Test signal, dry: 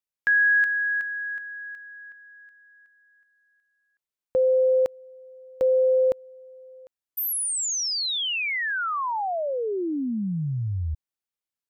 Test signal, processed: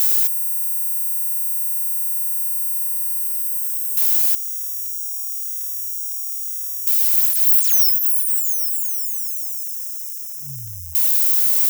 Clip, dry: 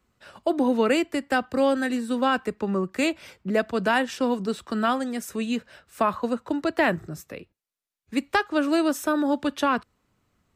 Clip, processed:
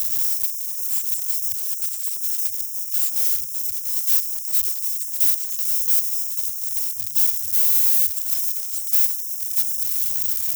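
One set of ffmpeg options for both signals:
ffmpeg -i in.wav -filter_complex "[0:a]aeval=exprs='val(0)+0.5*0.0473*sgn(val(0))':channel_layout=same,afftfilt=real='re*(1-between(b*sr/4096,150,5100))':imag='im*(1-between(b*sr/4096,150,5100))':win_size=4096:overlap=0.75,acrossover=split=4400[link_01][link_02];[link_02]aeval=exprs='(mod(42.2*val(0)+1,2)-1)/42.2':channel_layout=same[link_03];[link_01][link_03]amix=inputs=2:normalize=0,aemphasis=mode=production:type=riaa" out.wav

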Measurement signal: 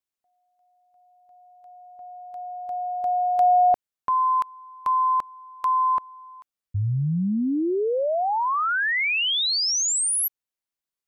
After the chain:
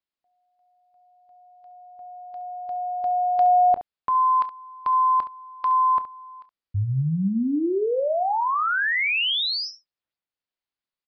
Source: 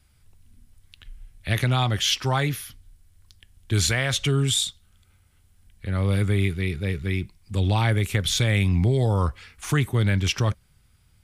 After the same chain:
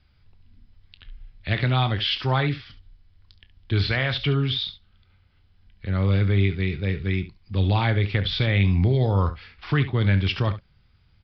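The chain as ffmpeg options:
ffmpeg -i in.wav -filter_complex "[0:a]aecho=1:1:21|31|69:0.141|0.15|0.211,acrossover=split=4300[link_01][link_02];[link_02]acompressor=threshold=-35dB:ratio=4:attack=1:release=60[link_03];[link_01][link_03]amix=inputs=2:normalize=0,aresample=11025,aresample=44100" out.wav

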